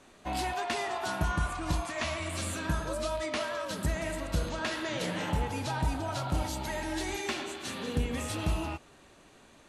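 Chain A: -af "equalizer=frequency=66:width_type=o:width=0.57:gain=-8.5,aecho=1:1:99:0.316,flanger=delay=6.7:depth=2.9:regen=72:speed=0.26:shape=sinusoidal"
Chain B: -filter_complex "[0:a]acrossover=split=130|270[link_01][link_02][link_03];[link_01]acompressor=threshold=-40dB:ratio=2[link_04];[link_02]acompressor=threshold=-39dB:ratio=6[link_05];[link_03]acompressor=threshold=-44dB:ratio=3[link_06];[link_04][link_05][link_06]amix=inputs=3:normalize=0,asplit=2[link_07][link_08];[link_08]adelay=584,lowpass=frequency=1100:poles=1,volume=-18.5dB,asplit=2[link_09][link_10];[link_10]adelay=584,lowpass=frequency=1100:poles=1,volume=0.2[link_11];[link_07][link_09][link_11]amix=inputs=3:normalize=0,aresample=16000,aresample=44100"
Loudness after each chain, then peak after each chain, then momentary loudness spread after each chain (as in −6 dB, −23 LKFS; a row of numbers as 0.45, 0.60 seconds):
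−38.0, −39.5 LKFS; −23.5, −23.0 dBFS; 3, 5 LU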